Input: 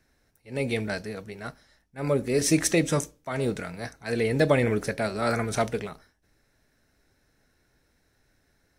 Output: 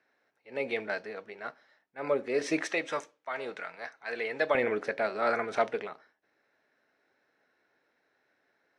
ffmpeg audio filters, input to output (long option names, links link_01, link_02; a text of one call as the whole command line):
ffmpeg -i in.wav -af "asetnsamples=nb_out_samples=441:pad=0,asendcmd='2.66 highpass f 750;4.55 highpass f 430',highpass=470,lowpass=2700" out.wav